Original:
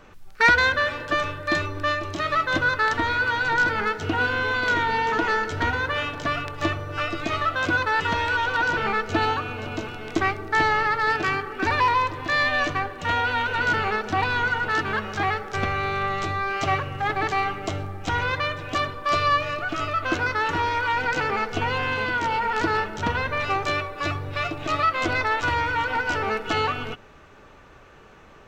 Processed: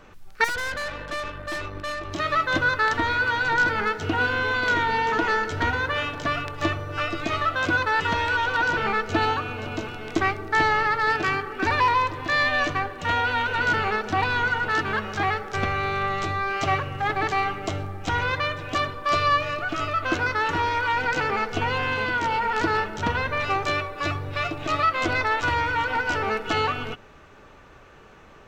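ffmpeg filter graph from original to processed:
-filter_complex "[0:a]asettb=1/sr,asplit=3[a][b][c];[a]atrim=end=0.444[d];[b]atrim=start=0.44:end=2.12,asetpts=PTS-STARTPTS,afade=t=in:d=0.004:c=qsin,afade=t=out:st=1.676:d=0.004:c=qsin,bass=f=250:g=-4,treble=f=4k:g=-6,aeval=exprs='val(0)+0.0126*(sin(2*PI*50*n/s)+sin(2*PI*2*50*n/s)/2+sin(2*PI*3*50*n/s)/3+sin(2*PI*4*50*n/s)/4+sin(2*PI*5*50*n/s)/5)':c=same,aeval=exprs='(tanh(22.4*val(0)+0.55)-tanh(0.55))/22.4':c=same[e];[c]atrim=start=2.116[f];[d][e]acrossfade=d=0.004:c1=hsin:c2=qsin[g];[g][f]acrossfade=d=0.004:c1=qsin:c2=hsin"

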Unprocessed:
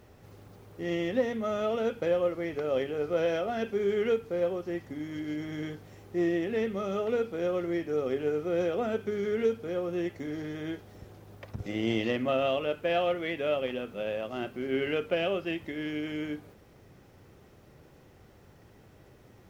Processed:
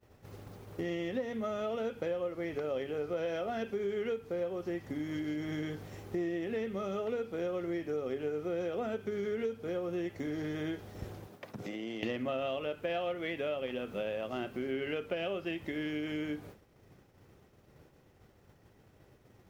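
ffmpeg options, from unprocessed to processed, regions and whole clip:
-filter_complex "[0:a]asettb=1/sr,asplit=3[a][b][c];[a]atrim=end=11.274[d];[b]atrim=start=11.27:end=12.03,asetpts=PTS-STARTPTS,afade=t=in:d=0.004:c=qsin,afade=t=out:st=0.756:d=0.004:c=qsin,highpass=f=150:w=0.5412,highpass=f=150:w=1.3066,volume=20.5dB,asoftclip=hard,volume=-20.5dB,acompressor=threshold=-44dB:ratio=6:attack=3.2:release=140:knee=1:detection=peak[e];[c]atrim=start=12.026[f];[d][e]acrossfade=d=0.004:c1=hsin:c2=qsin[g];[g][f]acrossfade=d=0.004:c1=qsin:c2=hsin,agate=range=-33dB:threshold=-45dB:ratio=3:detection=peak,acompressor=threshold=-44dB:ratio=4,volume=8.5dB"

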